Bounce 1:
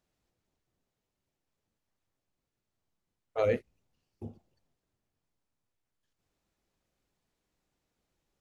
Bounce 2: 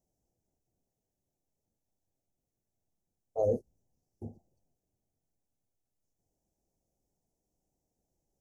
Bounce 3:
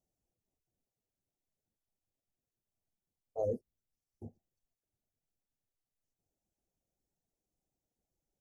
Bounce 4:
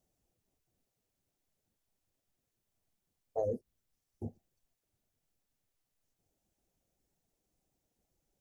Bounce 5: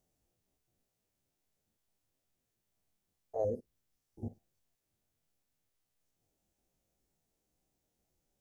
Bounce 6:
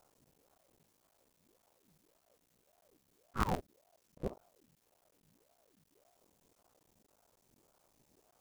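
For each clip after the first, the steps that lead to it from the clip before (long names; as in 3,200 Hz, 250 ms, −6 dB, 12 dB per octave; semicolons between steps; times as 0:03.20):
elliptic band-stop filter 790–5,800 Hz
reverb reduction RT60 0.72 s; level −5 dB
downward compressor, threshold −37 dBFS, peak gain reduction 8 dB; level +7 dB
spectrum averaged block by block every 50 ms; level +1.5 dB
sub-harmonics by changed cycles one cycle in 3, muted; volume swells 214 ms; ring modulator whose carrier an LFO sweeps 430 Hz, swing 65%, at 1.8 Hz; level +14.5 dB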